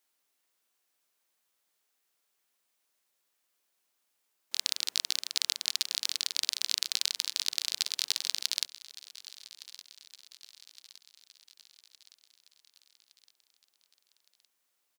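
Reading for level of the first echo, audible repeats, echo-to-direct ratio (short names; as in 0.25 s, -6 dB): -18.0 dB, 4, -16.5 dB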